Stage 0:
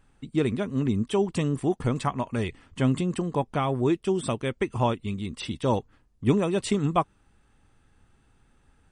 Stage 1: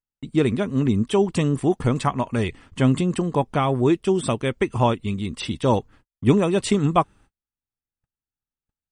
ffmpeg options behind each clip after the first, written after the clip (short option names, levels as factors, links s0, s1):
-af "agate=range=0.00891:threshold=0.00251:ratio=16:detection=peak,volume=1.78"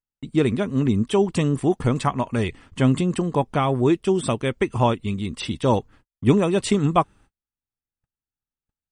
-af anull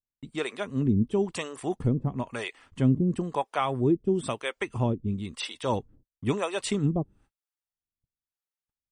-filter_complex "[0:a]acrossover=split=490[s0][s1];[s0]aeval=exprs='val(0)*(1-1/2+1/2*cos(2*PI*1*n/s))':c=same[s2];[s1]aeval=exprs='val(0)*(1-1/2-1/2*cos(2*PI*1*n/s))':c=same[s3];[s2][s3]amix=inputs=2:normalize=0,volume=0.794"